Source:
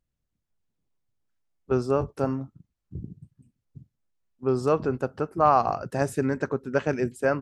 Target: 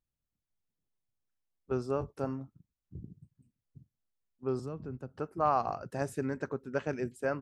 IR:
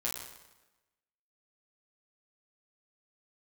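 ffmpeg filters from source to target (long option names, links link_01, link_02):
-filter_complex "[0:a]asettb=1/sr,asplit=3[link_01][link_02][link_03];[link_01]atrim=end=4.594[link_04];[link_02]atrim=start=4.59:end=5.17,asetpts=PTS-STARTPTS,afade=type=in:duration=0.004:curve=qsin,afade=type=out:start_time=0.576:duration=0.004:curve=qsin,acrossover=split=250[link_05][link_06];[link_06]acompressor=threshold=-42dB:ratio=2.5[link_07];[link_05][link_07]amix=inputs=2:normalize=0[link_08];[link_03]atrim=start=5.166[link_09];[link_04][link_08]acrossfade=duration=0.004:curve1=hsin:curve2=qsin[link_10];[link_10][link_09]acrossfade=duration=0.004:curve1=qsin:curve2=hsin,volume=-8.5dB"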